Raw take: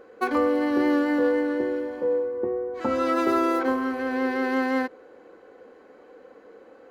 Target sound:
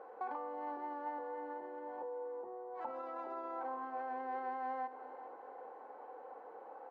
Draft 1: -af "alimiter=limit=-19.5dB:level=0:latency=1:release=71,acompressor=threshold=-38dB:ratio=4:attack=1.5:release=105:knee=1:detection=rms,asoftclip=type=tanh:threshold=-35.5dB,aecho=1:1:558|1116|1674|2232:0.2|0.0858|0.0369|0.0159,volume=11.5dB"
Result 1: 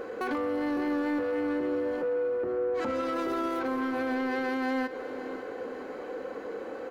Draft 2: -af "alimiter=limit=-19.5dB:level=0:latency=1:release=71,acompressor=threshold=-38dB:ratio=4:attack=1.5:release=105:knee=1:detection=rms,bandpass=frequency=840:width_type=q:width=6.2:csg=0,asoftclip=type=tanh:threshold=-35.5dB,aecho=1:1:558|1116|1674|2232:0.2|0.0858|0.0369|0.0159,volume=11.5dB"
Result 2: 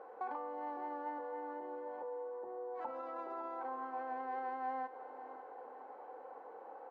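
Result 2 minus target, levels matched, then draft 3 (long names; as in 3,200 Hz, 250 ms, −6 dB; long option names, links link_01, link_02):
echo 164 ms late
-af "alimiter=limit=-19.5dB:level=0:latency=1:release=71,acompressor=threshold=-38dB:ratio=4:attack=1.5:release=105:knee=1:detection=rms,bandpass=frequency=840:width_type=q:width=6.2:csg=0,asoftclip=type=tanh:threshold=-35.5dB,aecho=1:1:394|788|1182|1576:0.2|0.0858|0.0369|0.0159,volume=11.5dB"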